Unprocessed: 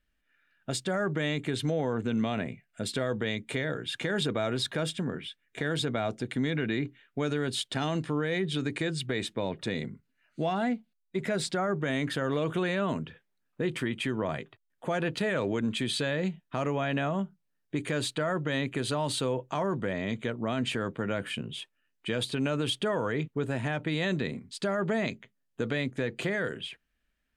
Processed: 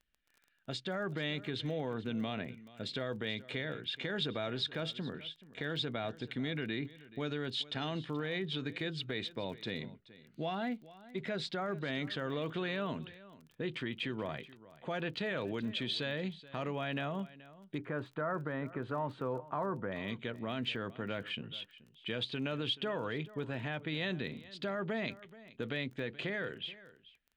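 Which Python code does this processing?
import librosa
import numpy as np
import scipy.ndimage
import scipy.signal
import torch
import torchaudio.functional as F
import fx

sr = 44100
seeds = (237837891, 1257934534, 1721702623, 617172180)

y = fx.lowpass_res(x, sr, hz=fx.steps((0.0, 3800.0), (17.78, 1300.0), (19.92, 3500.0)), q=1.8)
y = y + 10.0 ** (-18.5 / 20.0) * np.pad(y, (int(429 * sr / 1000.0), 0))[:len(y)]
y = fx.dmg_crackle(y, sr, seeds[0], per_s=19.0, level_db=-41.0)
y = F.gain(torch.from_numpy(y), -8.0).numpy()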